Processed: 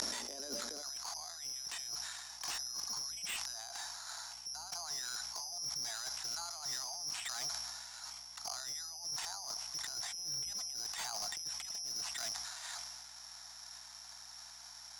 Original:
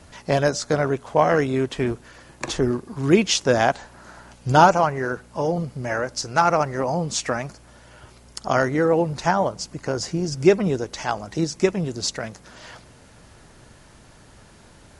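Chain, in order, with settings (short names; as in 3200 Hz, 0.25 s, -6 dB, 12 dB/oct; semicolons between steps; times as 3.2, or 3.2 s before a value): careless resampling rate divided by 8×, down filtered, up zero stuff; steep high-pass 200 Hz 96 dB/oct, from 0.81 s 680 Hz; negative-ratio compressor -23 dBFS, ratio -1; LPF 8400 Hz 24 dB/oct; hum 60 Hz, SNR 32 dB; hard clip -20.5 dBFS, distortion -10 dB; flipped gate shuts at -40 dBFS, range -30 dB; sustainer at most 28 dB/s; gain +15 dB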